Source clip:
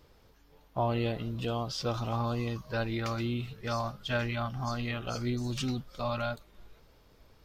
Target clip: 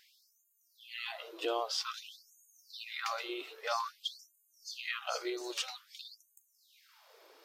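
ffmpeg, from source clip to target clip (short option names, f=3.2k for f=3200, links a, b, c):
-filter_complex "[0:a]asplit=2[a][b];[b]acompressor=threshold=-44dB:ratio=6,volume=-1.5dB[c];[a][c]amix=inputs=2:normalize=0,afftfilt=real='re*gte(b*sr/1024,300*pow(6500/300,0.5+0.5*sin(2*PI*0.51*pts/sr)))':imag='im*gte(b*sr/1024,300*pow(6500/300,0.5+0.5*sin(2*PI*0.51*pts/sr)))':win_size=1024:overlap=0.75"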